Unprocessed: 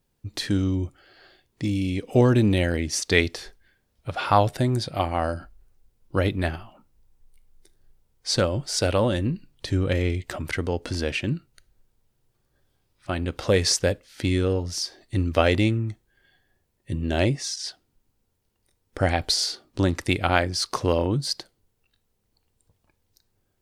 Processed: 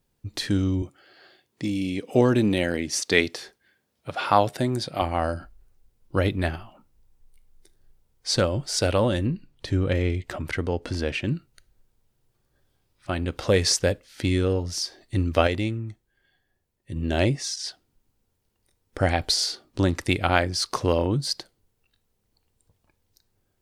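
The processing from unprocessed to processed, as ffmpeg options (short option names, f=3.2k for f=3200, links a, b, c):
-filter_complex "[0:a]asettb=1/sr,asplit=3[a][b][c];[a]atrim=end=0.824[d];[b]atrim=start=0.82:end=5.02,asetpts=PTS-STARTPTS,afade=t=in:d=0.004:c=qsin,afade=t=out:st=4.196:d=0.004:c=qsin,highpass=150[e];[c]atrim=start=5.016[f];[d][e]acrossfade=d=0.004:c1=hsin:c2=qsin[g];[g][f]acrossfade=d=0.004:c1=qsin:c2=hsin,asettb=1/sr,asplit=3[h][i][j];[h]atrim=end=9.264[k];[i]atrim=start=9.26:end=11.25,asetpts=PTS-STARTPTS,afade=t=in:d=0.004:c=qsin,afade=t=out:st=1.986:d=0.004:c=qsin,highshelf=f=4.3k:g=-6[l];[j]atrim=start=11.246[m];[k][l]acrossfade=d=0.004:c1=hsin:c2=qsin[n];[n][m]acrossfade=d=0.004:c1=qsin:c2=hsin,asplit=3[o][p][q];[o]atrim=end=15.472[r];[p]atrim=start=15.468:end=16.962,asetpts=PTS-STARTPTS,volume=-5.5dB[s];[q]atrim=start=16.958[t];[r][s]acrossfade=d=0.004:c1=hsin:c2=hsin[u];[u][t]acrossfade=d=0.004:c1=hsin:c2=hsin"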